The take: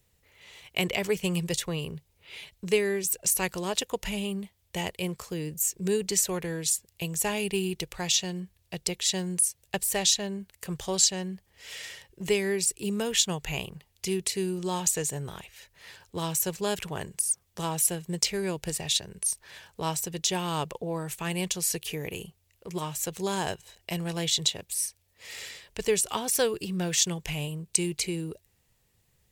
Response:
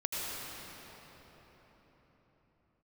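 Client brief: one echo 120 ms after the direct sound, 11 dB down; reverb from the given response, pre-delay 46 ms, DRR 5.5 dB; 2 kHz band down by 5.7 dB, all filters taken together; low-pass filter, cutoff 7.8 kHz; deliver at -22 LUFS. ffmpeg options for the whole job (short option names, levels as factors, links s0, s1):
-filter_complex "[0:a]lowpass=7800,equalizer=f=2000:t=o:g=-7.5,aecho=1:1:120:0.282,asplit=2[s0][s1];[1:a]atrim=start_sample=2205,adelay=46[s2];[s1][s2]afir=irnorm=-1:irlink=0,volume=0.266[s3];[s0][s3]amix=inputs=2:normalize=0,volume=2.51"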